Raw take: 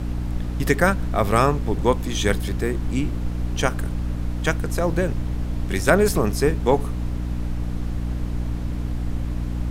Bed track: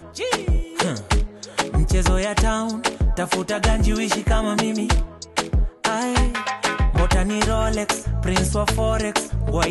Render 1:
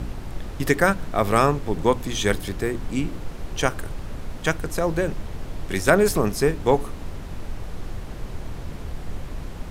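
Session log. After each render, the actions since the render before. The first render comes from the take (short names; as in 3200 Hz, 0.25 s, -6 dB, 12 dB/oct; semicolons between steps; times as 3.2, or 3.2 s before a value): de-hum 60 Hz, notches 5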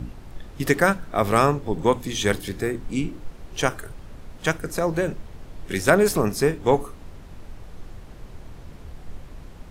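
noise print and reduce 8 dB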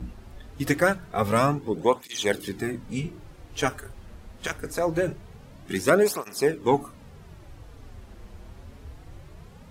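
tape flanging out of phase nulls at 0.24 Hz, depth 7.5 ms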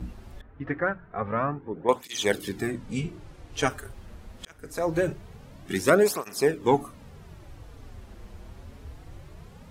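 0.41–1.89 ladder low-pass 2100 Hz, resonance 30%; 2.67–3.7 LPF 11000 Hz; 4.45–4.94 fade in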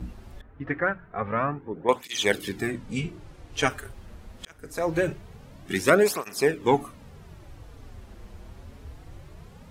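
dynamic EQ 2400 Hz, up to +5 dB, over -44 dBFS, Q 1.1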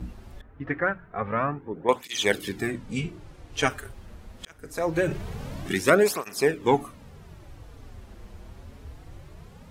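5.04–5.75 fast leveller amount 50%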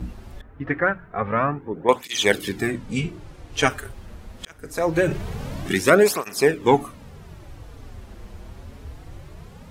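gain +4.5 dB; limiter -2 dBFS, peak gain reduction 2 dB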